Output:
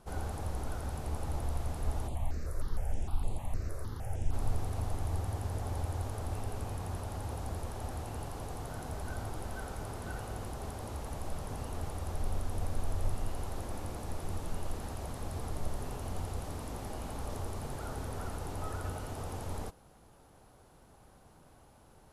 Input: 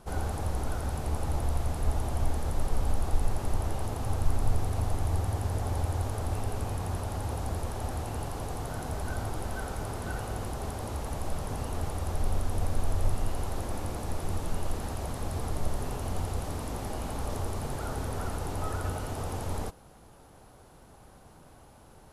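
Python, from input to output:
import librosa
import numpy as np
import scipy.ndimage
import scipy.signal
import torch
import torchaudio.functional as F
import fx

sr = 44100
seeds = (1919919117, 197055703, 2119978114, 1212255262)

y = fx.phaser_held(x, sr, hz=6.5, low_hz=830.0, high_hz=5600.0, at=(2.07, 4.32), fade=0.02)
y = y * librosa.db_to_amplitude(-5.5)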